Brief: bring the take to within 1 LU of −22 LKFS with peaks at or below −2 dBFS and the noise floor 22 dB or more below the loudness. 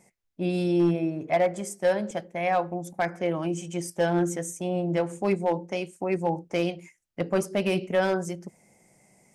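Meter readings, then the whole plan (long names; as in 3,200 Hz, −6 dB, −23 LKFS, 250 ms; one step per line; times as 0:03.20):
share of clipped samples 0.5%; peaks flattened at −16.0 dBFS; integrated loudness −27.5 LKFS; sample peak −16.0 dBFS; target loudness −22.0 LKFS
→ clipped peaks rebuilt −16 dBFS
level +5.5 dB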